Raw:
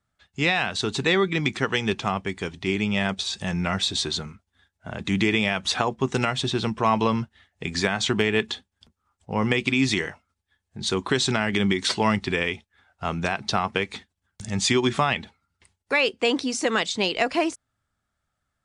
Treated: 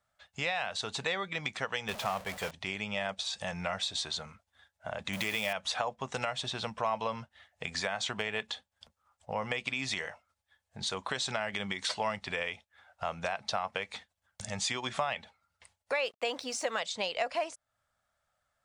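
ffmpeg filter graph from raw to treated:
-filter_complex "[0:a]asettb=1/sr,asplit=3[a][b][c];[a]atrim=end=1.884[d];[b]atrim=start=1.88:end=2.51,asetpts=PTS-STARTPTS,afade=t=in:d=0.004:c=qsin,afade=t=out:st=0.626:d=0.004:c=qsin,aeval=exprs='val(0)+0.5*0.0501*sgn(val(0))':c=same,agate=range=-33dB:threshold=-26dB:ratio=3:release=100:detection=peak[e];[c]atrim=start=2.506[f];[d][e]acrossfade=d=0.004:c1=hsin:c2=qsin[g];[g][f]acrossfade=d=0.004:c1=qsin:c2=hsin,asettb=1/sr,asplit=3[h][i][j];[h]atrim=end=5.134[k];[i]atrim=start=5.13:end=5.53,asetpts=PTS-STARTPTS,afade=t=in:d=0.004:c=qsin,afade=t=out:st=0.396:d=0.004:c=qsin,aeval=exprs='val(0)+0.5*0.0335*sgn(val(0))':c=same,highshelf=f=7.5k:g=11[l];[j]atrim=start=5.526[m];[k][l]acrossfade=d=0.004:c1=hsin:c2=qsin[n];[n][m]acrossfade=d=0.004:c1=qsin:c2=hsin,asettb=1/sr,asplit=3[o][p][q];[o]atrim=end=16.044[r];[p]atrim=start=16.04:end=16.79,asetpts=PTS-STARTPTS,afade=t=in:d=0.004:c=qsin,afade=t=out:st=0.746:d=0.004:c=qsin,highpass=46,aeval=exprs='sgn(val(0))*max(abs(val(0))-0.00316,0)':c=same[s];[q]atrim=start=16.786[t];[r][s]acrossfade=d=0.004:c1=hsin:c2=qsin[u];[u][t]acrossfade=d=0.004:c1=qsin:c2=hsin,lowshelf=f=450:t=q:w=3:g=-7.5,acompressor=threshold=-38dB:ratio=2"

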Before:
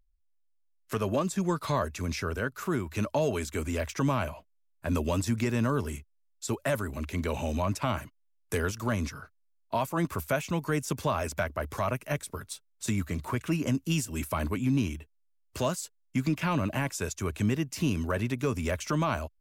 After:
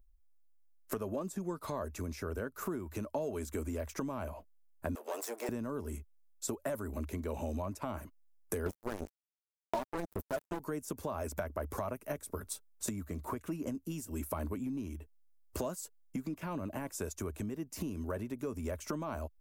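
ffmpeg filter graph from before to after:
-filter_complex "[0:a]asettb=1/sr,asplit=3[a][b][c];[a]atrim=end=4.954[d];[b]atrim=start=4.95:end=5.49,asetpts=PTS-STARTPTS,afade=t=in:d=0.004:c=qsin,afade=t=out:st=0.536:d=0.004:c=qsin,aeval=exprs='clip(val(0),-1,0.00891)':c=same,highpass=f=460:w=0.5412,highpass=f=460:w=1.3066[e];[c]atrim=start=5.486[f];[d][e]acrossfade=d=0.004:c1=hsin:c2=qsin[g];[g][f]acrossfade=d=0.004:c1=qsin:c2=hsin,asettb=1/sr,asplit=3[h][i][j];[h]atrim=end=8.664[k];[i]atrim=start=8.66:end=10.6,asetpts=PTS-STARTPTS,afade=t=in:d=0.004:c=qsin,afade=t=out:st=1.936:d=0.004:c=qsin,equalizer=f=380:t=o:w=0.26:g=4,aphaser=in_gain=1:out_gain=1:delay=3.6:decay=0.59:speed=1.3:type=triangular,acrusher=bits=3:mix=0:aa=0.5[l];[j]atrim=start=10.596[m];[k][l]acrossfade=d=0.004:c1=hsin:c2=qsin[n];[n][m]acrossfade=d=0.004:c1=qsin:c2=hsin,equalizer=f=3.1k:w=0.42:g=-14.5,acompressor=threshold=-39dB:ratio=6,equalizer=f=130:w=1.6:g=-12.5,volume=7dB"

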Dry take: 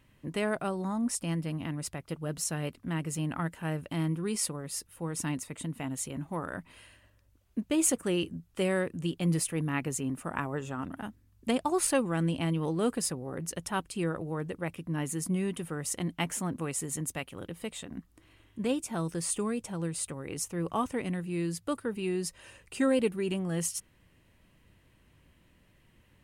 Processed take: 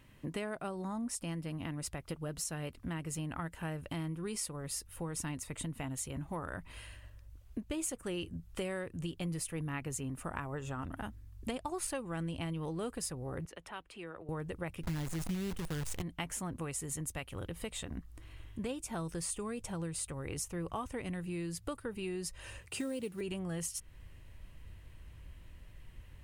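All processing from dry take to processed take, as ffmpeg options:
-filter_complex "[0:a]asettb=1/sr,asplit=3[a][b][c];[a]atrim=end=13.454[d];[b]atrim=start=13.45:end=14.29,asetpts=PTS-STARTPTS,afade=t=in:d=0.004:c=qsin,afade=t=out:st=0.836:d=0.004:c=qsin,acrossover=split=120|3000[e][f][g];[f]acompressor=threshold=-53dB:ratio=2:attack=3.2:release=140:knee=2.83:detection=peak[h];[e][h][g]amix=inputs=3:normalize=0,acrossover=split=250 2800:gain=0.0631 1 0.0794[i][j][k];[i][j][k]amix=inputs=3:normalize=0[l];[c]atrim=start=14.286[m];[d][l]acrossfade=d=0.004:c1=hsin:c2=qsin[n];[n][m]acrossfade=d=0.004:c1=qsin:c2=hsin,asettb=1/sr,asplit=3[o][p][q];[o]atrim=end=14.834[r];[p]atrim=start=14.83:end=16.02,asetpts=PTS-STARTPTS,afade=t=in:d=0.004:c=qsin,afade=t=out:st=1.186:d=0.004:c=qsin,lowpass=10k,lowshelf=f=280:g=11.5,acrusher=bits=6:dc=4:mix=0:aa=0.000001[s];[q]atrim=start=16.016[t];[r][s]acrossfade=d=0.004:c1=hsin:c2=qsin[u];[u][t]acrossfade=d=0.004:c1=qsin:c2=hsin,asettb=1/sr,asplit=3[v][w][x];[v]atrim=end=22.614[y];[w]atrim=start=22.61:end=23.21,asetpts=PTS-STARTPTS,afade=t=in:d=0.004:c=qsin,afade=t=out:st=0.596:d=0.004:c=qsin,highpass=f=84:w=0.5412,highpass=f=84:w=1.3066,acrossover=split=490|3000[z][aa][ab];[aa]acompressor=threshold=-42dB:ratio=5:attack=3.2:release=140:knee=2.83:detection=peak[ac];[z][ac][ab]amix=inputs=3:normalize=0,acrusher=bits=7:mode=log:mix=0:aa=0.000001[ad];[x]atrim=start=23.206[ae];[y][ad]acrossfade=d=0.004:c1=hsin:c2=qsin[af];[af][ae]acrossfade=d=0.004:c1=qsin:c2=hsin,asubboost=boost=6:cutoff=80,acompressor=threshold=-40dB:ratio=4,volume=3dB"

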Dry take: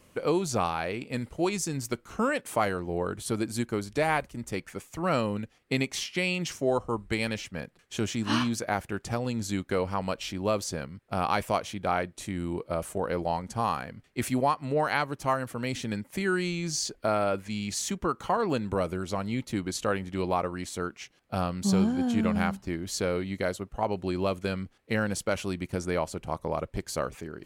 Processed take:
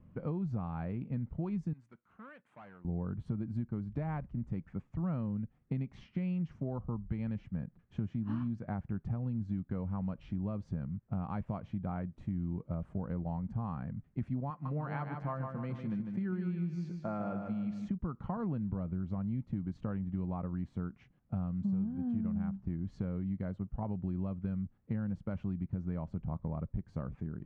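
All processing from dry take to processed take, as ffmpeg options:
-filter_complex "[0:a]asettb=1/sr,asplit=3[a][b][c];[a]atrim=end=1.734[d];[b]atrim=start=1.73:end=2.85,asetpts=PTS-STARTPTS,afade=t=in:d=0.004:c=qsin,afade=t=out:st=1.116:d=0.004:c=qsin,asoftclip=type=hard:threshold=-25.5dB,bandpass=f=5.4k:t=q:w=0.52,equalizer=f=5k:w=1.3:g=-11[e];[c]atrim=start=2.846[f];[d][e]acrossfade=d=0.004:c1=hsin:c2=qsin[g];[g][f]acrossfade=d=0.004:c1=qsin:c2=hsin,asettb=1/sr,asplit=3[h][i][j];[h]atrim=end=14.504[k];[i]atrim=start=14.5:end=17.88,asetpts=PTS-STARTPTS,afade=t=in:d=0.004:c=qsin,afade=t=out:st=3.376:d=0.004:c=qsin,highpass=f=290:p=1,aecho=1:1:5.8:0.35,atrim=end_sample=149058,aecho=1:1:151|302|453|604|755:0.473|0.203|0.0875|0.0376|0.0162,atrim=end_sample=149058[l];[j]atrim=start=17.876[m];[k][l]acrossfade=d=0.004:c1=hsin:c2=qsin[n];[n][m]acrossfade=d=0.004:c1=qsin:c2=hsin,lowpass=1.2k,lowshelf=f=270:t=q:w=1.5:g=12.5,acompressor=threshold=-24dB:ratio=5,volume=-8.5dB"

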